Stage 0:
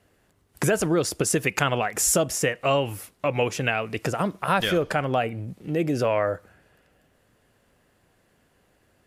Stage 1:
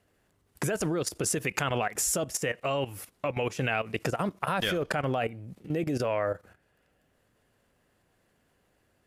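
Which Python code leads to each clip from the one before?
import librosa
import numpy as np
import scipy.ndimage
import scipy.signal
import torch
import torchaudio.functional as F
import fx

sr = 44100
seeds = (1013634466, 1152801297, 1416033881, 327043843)

y = fx.level_steps(x, sr, step_db=14)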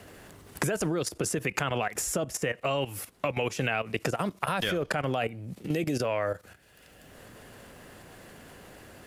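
y = fx.band_squash(x, sr, depth_pct=70)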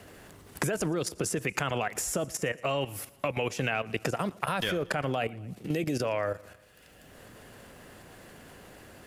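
y = fx.echo_feedback(x, sr, ms=116, feedback_pct=56, wet_db=-23)
y = F.gain(torch.from_numpy(y), -1.0).numpy()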